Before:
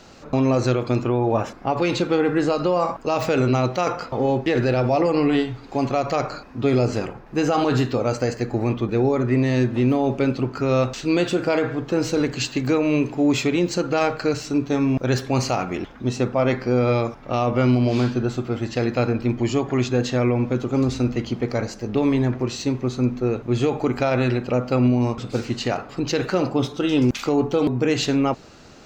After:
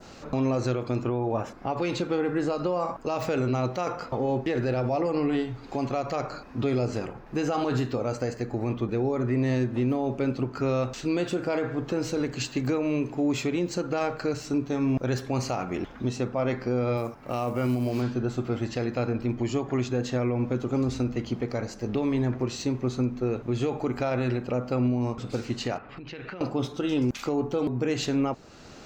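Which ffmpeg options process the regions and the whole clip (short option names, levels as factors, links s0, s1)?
-filter_complex "[0:a]asettb=1/sr,asplit=3[s0][s1][s2];[s0]atrim=end=16.974[s3];[s1]atrim=start=16.97:end=18.02,asetpts=PTS-STARTPTS,afade=t=in:d=0.004:c=qsin,afade=t=out:st=1.046:d=0.004:c=qsin,highpass=f=67:p=1,bandreject=f=3500:w=8.1,acrusher=bits=7:mode=log:mix=0:aa=0.000001[s4];[s2]atrim=start=18.016[s5];[s3][s4]acrossfade=d=0.004:c1=hsin:c2=qsin[s6];[s6][s5]acrossfade=d=0.004:c1=qsin:c2=hsin,asettb=1/sr,asplit=3[s7][s8][s9];[s7]atrim=end=25.784[s10];[s8]atrim=start=25.78:end=26.41,asetpts=PTS-STARTPTS,afade=t=in:d=0.004:c=qsin,afade=t=out:st=0.626:d=0.004:c=qsin,acompressor=threshold=0.0251:ratio=20:attack=3.2:release=140:knee=1:detection=peak,lowpass=f=2500:t=q:w=1.6,equalizer=f=480:w=0.39:g=-4[s11];[s9]atrim=start=26.406[s12];[s10][s11]acrossfade=d=0.004:c1=hsin:c2=qsin[s13];[s13][s12]acrossfade=d=0.004:c1=qsin:c2=hsin,adynamicequalizer=threshold=0.00891:dfrequency=3500:dqfactor=0.75:tfrequency=3500:tqfactor=0.75:attack=5:release=100:ratio=0.375:range=2:mode=cutabove:tftype=bell,alimiter=limit=0.126:level=0:latency=1:release=448"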